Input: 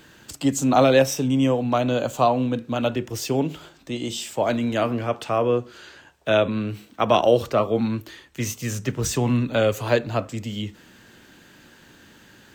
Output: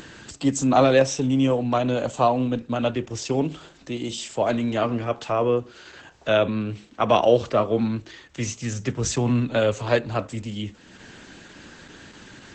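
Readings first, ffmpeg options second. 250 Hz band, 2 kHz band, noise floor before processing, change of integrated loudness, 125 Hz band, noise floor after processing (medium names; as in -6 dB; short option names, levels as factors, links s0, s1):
-0.5 dB, -1.0 dB, -52 dBFS, -0.5 dB, -0.5 dB, -51 dBFS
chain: -af "acompressor=mode=upward:threshold=0.02:ratio=2.5" -ar 48000 -c:a libopus -b:a 12k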